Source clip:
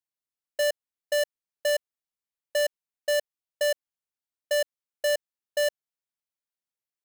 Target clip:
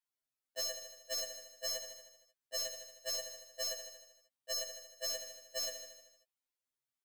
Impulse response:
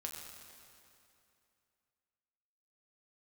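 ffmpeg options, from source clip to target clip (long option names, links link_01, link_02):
-af "aecho=1:1:77|154|231|308|385|462|539:0.316|0.187|0.11|0.0649|0.0383|0.0226|0.0133,alimiter=limit=-24dB:level=0:latency=1:release=123,afftfilt=real='re*2.45*eq(mod(b,6),0)':imag='im*2.45*eq(mod(b,6),0)':win_size=2048:overlap=0.75"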